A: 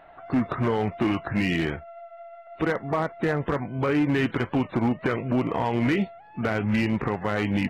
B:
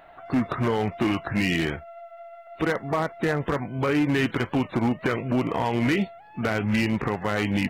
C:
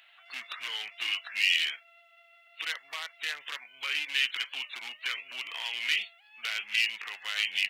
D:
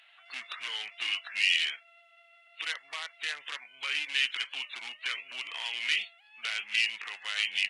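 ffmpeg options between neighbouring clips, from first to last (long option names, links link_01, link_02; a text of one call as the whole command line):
ffmpeg -i in.wav -af "highshelf=frequency=4200:gain=10" out.wav
ffmpeg -i in.wav -af "highpass=frequency=2900:width_type=q:width=2.6" out.wav
ffmpeg -i in.wav -ar 24000 -c:a libmp3lame -b:a 80k out.mp3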